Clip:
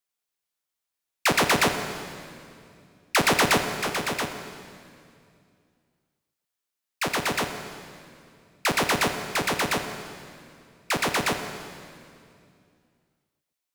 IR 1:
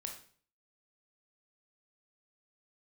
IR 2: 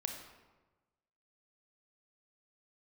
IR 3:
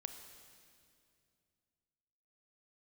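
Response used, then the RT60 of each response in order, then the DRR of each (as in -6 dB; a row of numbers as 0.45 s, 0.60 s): 3; 0.50 s, 1.2 s, 2.4 s; 2.0 dB, 3.5 dB, 6.5 dB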